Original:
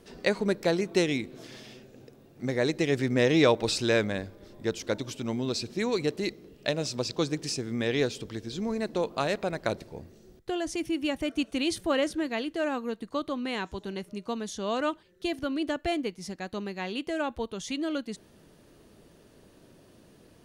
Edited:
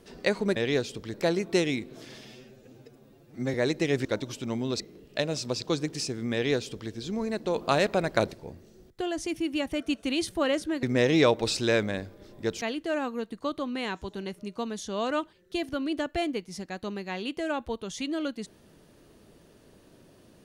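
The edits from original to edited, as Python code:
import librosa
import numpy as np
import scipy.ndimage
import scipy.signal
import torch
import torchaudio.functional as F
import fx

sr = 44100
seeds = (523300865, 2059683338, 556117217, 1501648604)

y = fx.edit(x, sr, fx.stretch_span(start_s=1.67, length_s=0.86, factor=1.5),
    fx.move(start_s=3.04, length_s=1.79, to_s=12.32),
    fx.cut(start_s=5.58, length_s=0.71),
    fx.duplicate(start_s=7.82, length_s=0.58, to_s=0.56),
    fx.clip_gain(start_s=9.05, length_s=0.76, db=4.5), tone=tone)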